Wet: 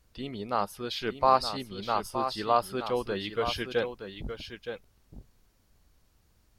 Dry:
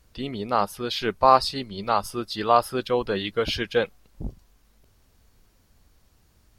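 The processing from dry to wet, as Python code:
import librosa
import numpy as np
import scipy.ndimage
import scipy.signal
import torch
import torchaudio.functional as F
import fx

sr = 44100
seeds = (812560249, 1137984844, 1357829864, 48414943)

y = x + 10.0 ** (-9.0 / 20.0) * np.pad(x, (int(919 * sr / 1000.0), 0))[:len(x)]
y = y * 10.0 ** (-6.0 / 20.0)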